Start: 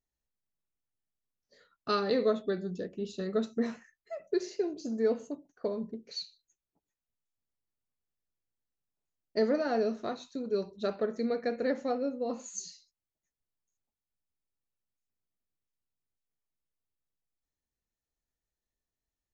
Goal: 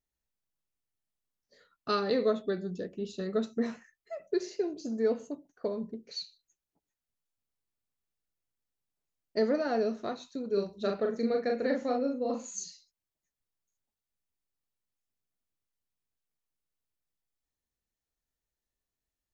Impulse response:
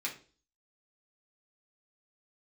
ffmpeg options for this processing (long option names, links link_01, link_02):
-filter_complex "[0:a]asettb=1/sr,asplit=3[link_01][link_02][link_03];[link_01]atrim=end=10.534[link_04];[link_02]atrim=start=10.53:end=12.64,asetpts=PTS-STARTPTS,afade=type=in:duration=0.004:curve=qsin,afade=type=out:start_time=2.106:duration=0.004:curve=qsin,asplit=2[link_05][link_06];[link_06]adelay=40,volume=-4dB[link_07];[link_05][link_07]amix=inputs=2:normalize=0,atrim=end_sample=93051[link_08];[link_03]atrim=start=12.636[link_09];[link_04][link_08]acrossfade=duration=0.004:curve1=hsin:curve2=qsin[link_10];[link_10][link_09]acrossfade=duration=0.004:curve1=qsin:curve2=hsin"